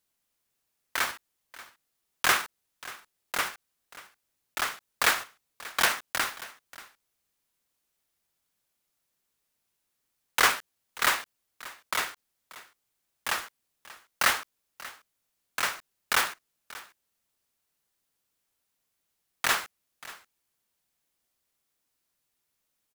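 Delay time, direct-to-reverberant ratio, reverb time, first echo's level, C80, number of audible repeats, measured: 585 ms, no reverb, no reverb, -18.5 dB, no reverb, 1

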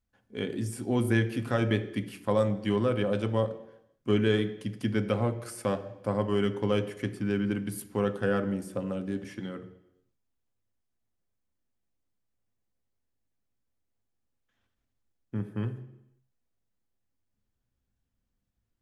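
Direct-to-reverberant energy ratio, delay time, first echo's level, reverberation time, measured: 8.0 dB, no echo, no echo, 0.85 s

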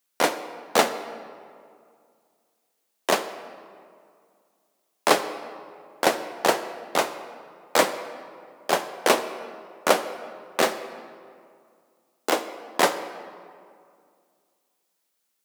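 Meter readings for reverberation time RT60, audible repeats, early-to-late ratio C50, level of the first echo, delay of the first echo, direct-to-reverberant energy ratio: 2.2 s, no echo, 11.0 dB, no echo, no echo, 10.0 dB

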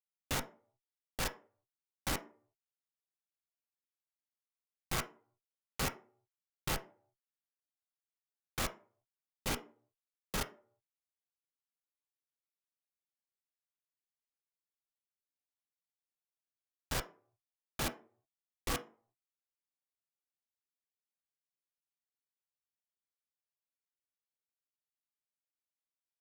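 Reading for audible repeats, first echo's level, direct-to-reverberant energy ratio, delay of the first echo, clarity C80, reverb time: no echo, no echo, 5.0 dB, no echo, 21.0 dB, 0.45 s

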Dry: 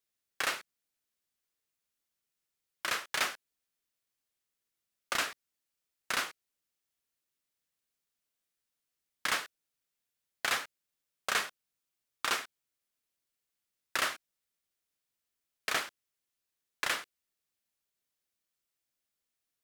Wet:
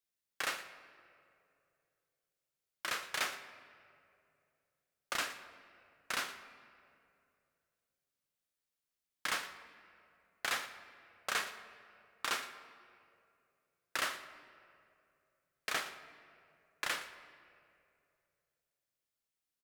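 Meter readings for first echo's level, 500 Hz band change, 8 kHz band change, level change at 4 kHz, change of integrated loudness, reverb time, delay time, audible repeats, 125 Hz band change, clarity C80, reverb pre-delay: -16.5 dB, -4.0 dB, -4.5 dB, -4.0 dB, -4.5 dB, 2.5 s, 116 ms, 1, -4.0 dB, 11.5 dB, 4 ms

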